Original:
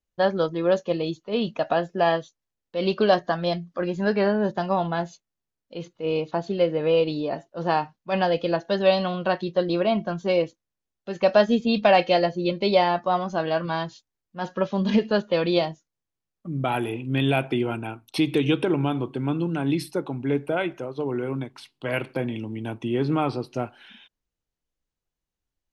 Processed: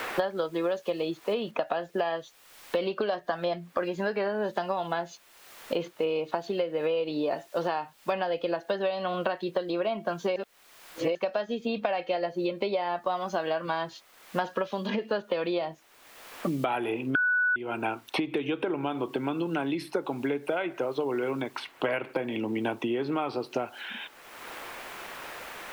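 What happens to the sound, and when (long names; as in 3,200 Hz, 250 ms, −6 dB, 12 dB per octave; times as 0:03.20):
0:01.51: noise floor change −57 dB −65 dB
0:10.36–0:11.15: reverse
0:17.15–0:17.56: beep over 1,480 Hz −7 dBFS
whole clip: downward compressor 6 to 1, threshold −28 dBFS; bass and treble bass −14 dB, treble −8 dB; multiband upward and downward compressor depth 100%; level +4 dB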